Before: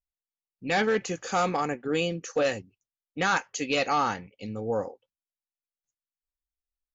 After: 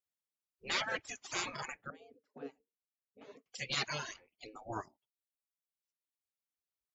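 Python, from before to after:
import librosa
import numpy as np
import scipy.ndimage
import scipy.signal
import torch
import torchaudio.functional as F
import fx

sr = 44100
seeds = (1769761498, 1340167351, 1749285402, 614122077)

y = fx.spec_gate(x, sr, threshold_db=-15, keep='weak')
y = fx.dereverb_blind(y, sr, rt60_s=1.3)
y = fx.double_bandpass(y, sr, hz=350.0, octaves=0.71, at=(1.9, 3.46))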